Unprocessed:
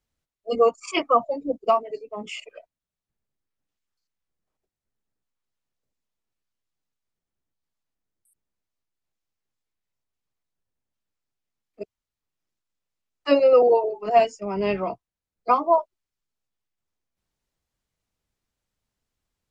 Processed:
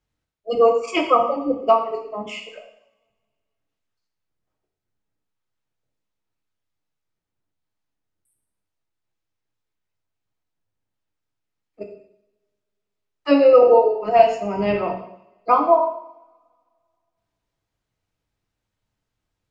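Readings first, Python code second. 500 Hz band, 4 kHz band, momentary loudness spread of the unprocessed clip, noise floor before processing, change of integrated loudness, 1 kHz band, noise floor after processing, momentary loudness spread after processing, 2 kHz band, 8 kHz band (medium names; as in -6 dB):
+4.0 dB, +1.5 dB, 18 LU, under -85 dBFS, +4.0 dB, +4.0 dB, -81 dBFS, 20 LU, +3.0 dB, no reading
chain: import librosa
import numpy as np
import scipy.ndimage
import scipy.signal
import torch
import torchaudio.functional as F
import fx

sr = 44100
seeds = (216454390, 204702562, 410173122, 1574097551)

y = fx.high_shelf(x, sr, hz=6100.0, db=-10.5)
y = fx.rev_double_slope(y, sr, seeds[0], early_s=0.73, late_s=2.1, knee_db=-27, drr_db=2.0)
y = y * 10.0 ** (2.0 / 20.0)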